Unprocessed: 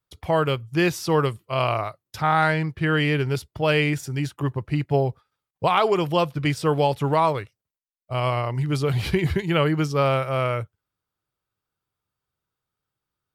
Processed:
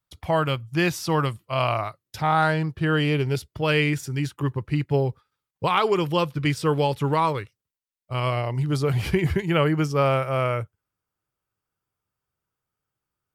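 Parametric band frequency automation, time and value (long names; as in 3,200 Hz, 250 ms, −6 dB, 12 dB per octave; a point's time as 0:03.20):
parametric band −8.5 dB 0.38 octaves
0:01.79 420 Hz
0:02.40 2,100 Hz
0:03.03 2,100 Hz
0:03.63 680 Hz
0:08.22 680 Hz
0:08.94 3,900 Hz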